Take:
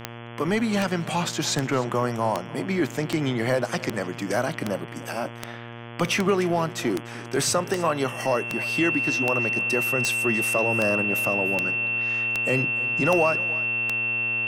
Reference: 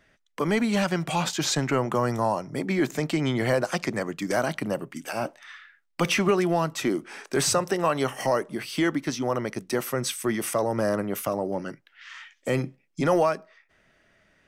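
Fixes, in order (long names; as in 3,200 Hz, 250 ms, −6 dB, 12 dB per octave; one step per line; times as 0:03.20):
click removal
hum removal 117.7 Hz, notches 29
notch filter 2,700 Hz, Q 30
echo removal 298 ms −19 dB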